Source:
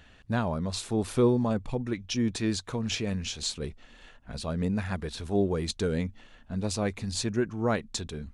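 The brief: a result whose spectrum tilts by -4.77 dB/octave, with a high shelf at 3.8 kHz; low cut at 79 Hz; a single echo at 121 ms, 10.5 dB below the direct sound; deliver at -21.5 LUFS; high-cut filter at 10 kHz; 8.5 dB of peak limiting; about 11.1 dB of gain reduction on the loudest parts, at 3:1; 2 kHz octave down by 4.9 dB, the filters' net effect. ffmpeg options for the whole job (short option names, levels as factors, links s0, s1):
-af "highpass=79,lowpass=10000,equalizer=f=2000:t=o:g=-8.5,highshelf=f=3800:g=6.5,acompressor=threshold=0.0178:ratio=3,alimiter=level_in=2.24:limit=0.0631:level=0:latency=1,volume=0.447,aecho=1:1:121:0.299,volume=8.41"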